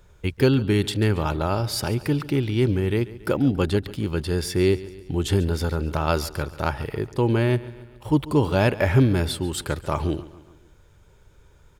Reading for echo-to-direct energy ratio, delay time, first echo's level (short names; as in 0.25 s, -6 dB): -16.5 dB, 0.14 s, -18.0 dB